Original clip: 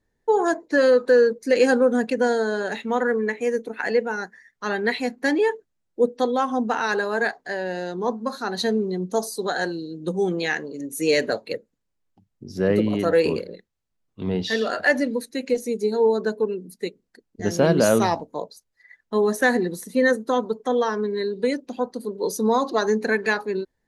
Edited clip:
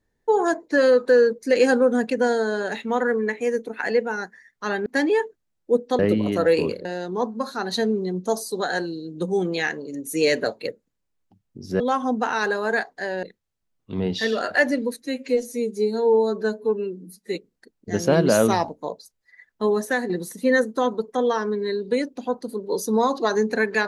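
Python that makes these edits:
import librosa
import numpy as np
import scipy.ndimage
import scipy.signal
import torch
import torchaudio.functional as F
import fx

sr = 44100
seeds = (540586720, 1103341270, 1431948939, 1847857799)

y = fx.edit(x, sr, fx.cut(start_s=4.86, length_s=0.29),
    fx.swap(start_s=6.28, length_s=1.43, other_s=12.66, other_length_s=0.86),
    fx.stretch_span(start_s=15.32, length_s=1.55, factor=1.5),
    fx.fade_out_to(start_s=19.15, length_s=0.46, floor_db=-8.0), tone=tone)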